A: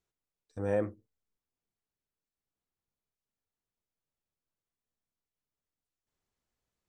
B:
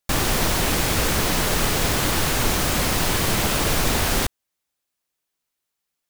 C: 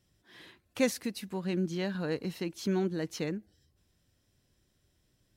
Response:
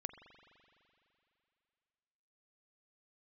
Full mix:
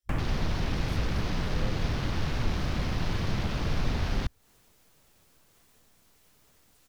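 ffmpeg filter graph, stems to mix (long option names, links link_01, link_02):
-filter_complex "[0:a]acompressor=mode=upward:threshold=-34dB:ratio=2.5,adelay=900,volume=-2.5dB[link_01];[1:a]afwtdn=0.0316,highshelf=frequency=11000:gain=-7.5,volume=-3dB[link_02];[2:a]highpass=410,crystalizer=i=2:c=0,volume=-17.5dB[link_03];[link_01][link_02][link_03]amix=inputs=3:normalize=0,acrossover=split=210[link_04][link_05];[link_05]acompressor=threshold=-40dB:ratio=2.5[link_06];[link_04][link_06]amix=inputs=2:normalize=0"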